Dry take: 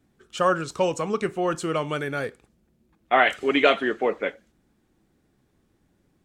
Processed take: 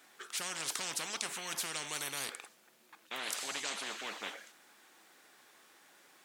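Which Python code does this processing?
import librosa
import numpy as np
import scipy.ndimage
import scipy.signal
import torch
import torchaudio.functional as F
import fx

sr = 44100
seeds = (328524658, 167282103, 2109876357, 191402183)

y = scipy.signal.sosfilt(scipy.signal.butter(2, 1000.0, 'highpass', fs=sr, output='sos'), x)
y = fx.spectral_comp(y, sr, ratio=10.0)
y = F.gain(torch.from_numpy(y), -7.0).numpy()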